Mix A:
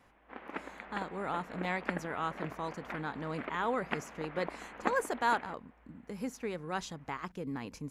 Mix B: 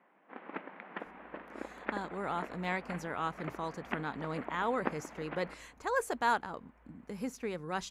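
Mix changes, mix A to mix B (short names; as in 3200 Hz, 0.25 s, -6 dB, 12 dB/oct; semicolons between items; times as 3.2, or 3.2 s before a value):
speech: entry +1.00 s; background: add air absorption 220 m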